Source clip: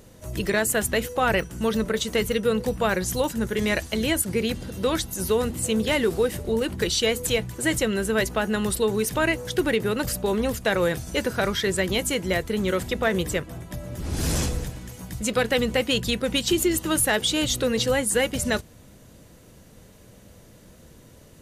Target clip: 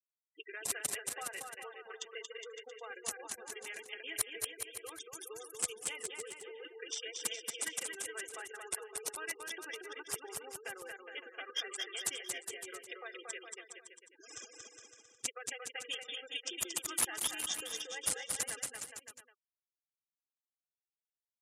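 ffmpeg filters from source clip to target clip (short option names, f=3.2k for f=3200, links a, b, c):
-af "lowshelf=f=160:g=-7,acompressor=threshold=-24dB:ratio=10,acrusher=bits=5:mix=0:aa=0.5,asuperstop=centerf=4200:order=20:qfactor=3.5,aderivative,aecho=1:1:2.5:0.61,adynamicsmooth=sensitivity=4.5:basefreq=1.5k,highpass=59,afftfilt=real='re*gte(hypot(re,im),0.00794)':imag='im*gte(hypot(re,im),0.00794)':win_size=1024:overlap=0.75,aecho=1:1:230|414|561.2|679|773.2:0.631|0.398|0.251|0.158|0.1"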